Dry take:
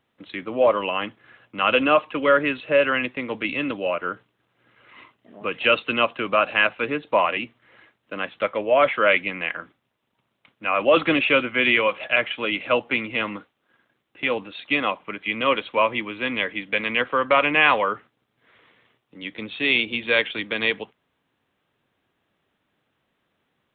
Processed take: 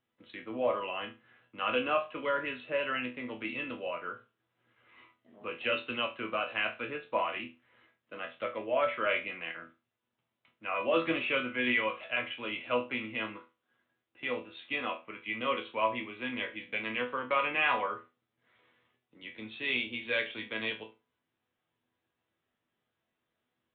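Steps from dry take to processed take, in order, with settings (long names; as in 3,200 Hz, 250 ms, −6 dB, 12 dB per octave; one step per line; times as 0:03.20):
resonators tuned to a chord E2 sus4, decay 0.28 s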